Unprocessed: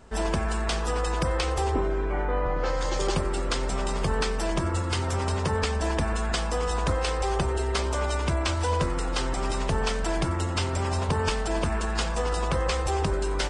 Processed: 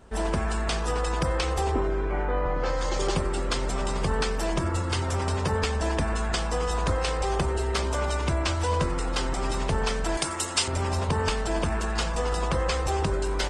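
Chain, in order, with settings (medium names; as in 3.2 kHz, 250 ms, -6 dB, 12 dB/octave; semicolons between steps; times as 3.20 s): 10.17–10.68 s: RIAA curve recording; Opus 24 kbps 48 kHz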